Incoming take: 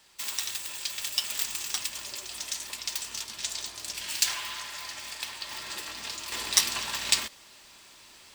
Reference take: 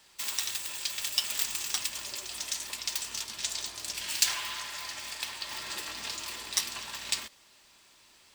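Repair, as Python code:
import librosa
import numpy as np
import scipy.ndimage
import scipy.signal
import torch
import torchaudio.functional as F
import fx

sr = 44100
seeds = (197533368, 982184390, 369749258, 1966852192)

y = fx.gain(x, sr, db=fx.steps((0.0, 0.0), (6.32, -7.0)))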